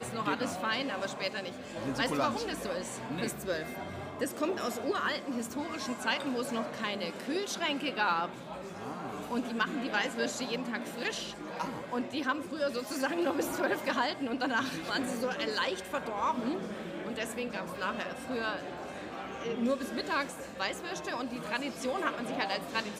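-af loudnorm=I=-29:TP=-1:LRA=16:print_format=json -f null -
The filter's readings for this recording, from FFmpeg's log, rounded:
"input_i" : "-34.0",
"input_tp" : "-16.2",
"input_lra" : "3.0",
"input_thresh" : "-44.0",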